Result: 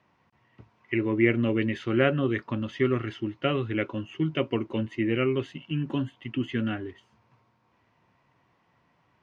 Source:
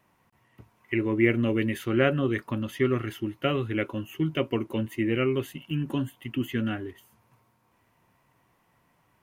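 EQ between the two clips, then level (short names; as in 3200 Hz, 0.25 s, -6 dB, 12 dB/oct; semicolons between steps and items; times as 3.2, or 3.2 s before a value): HPF 58 Hz; LPF 5400 Hz 24 dB/oct; 0.0 dB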